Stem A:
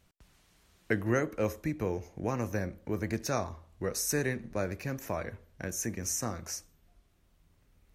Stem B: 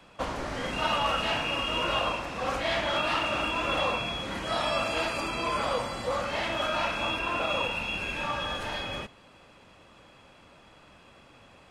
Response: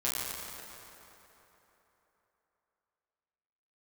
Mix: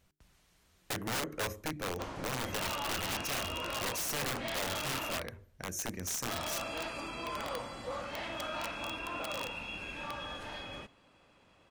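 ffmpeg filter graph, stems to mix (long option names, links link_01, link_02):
-filter_complex "[0:a]bandreject=frequency=50:width_type=h:width=6,bandreject=frequency=100:width_type=h:width=6,bandreject=frequency=150:width_type=h:width=6,bandreject=frequency=200:width_type=h:width=6,bandreject=frequency=250:width_type=h:width=6,bandreject=frequency=300:width_type=h:width=6,bandreject=frequency=350:width_type=h:width=6,bandreject=frequency=400:width_type=h:width=6,volume=-2.5dB[link_01];[1:a]adynamicequalizer=threshold=0.00141:dfrequency=290:dqfactor=7.3:tfrequency=290:tqfactor=7.3:attack=5:release=100:ratio=0.375:range=2.5:mode=boostabove:tftype=bell,adelay=1800,volume=-9.5dB,asplit=3[link_02][link_03][link_04];[link_02]atrim=end=5.19,asetpts=PTS-STARTPTS,afade=type=out:start_time=5.186:duration=0.004:curve=hsin[link_05];[link_03]atrim=start=5.19:end=6.28,asetpts=PTS-STARTPTS,volume=0[link_06];[link_04]atrim=start=6.28,asetpts=PTS-STARTPTS,afade=type=in:duration=0.004:curve=hsin[link_07];[link_05][link_06][link_07]concat=n=3:v=0:a=1[link_08];[link_01][link_08]amix=inputs=2:normalize=0,aeval=exprs='(mod(26.6*val(0)+1,2)-1)/26.6':channel_layout=same"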